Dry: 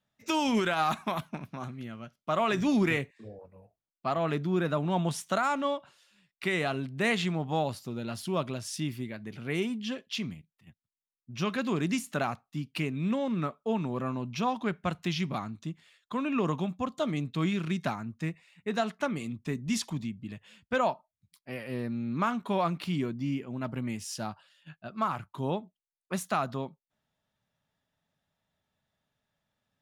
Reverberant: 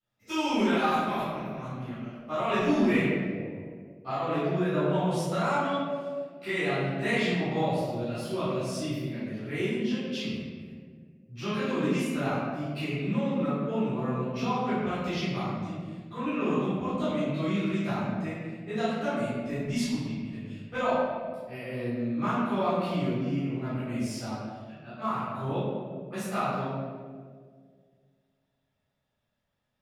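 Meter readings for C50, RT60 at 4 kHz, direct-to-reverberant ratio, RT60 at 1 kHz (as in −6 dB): −3.0 dB, 1.0 s, −15.0 dB, 1.5 s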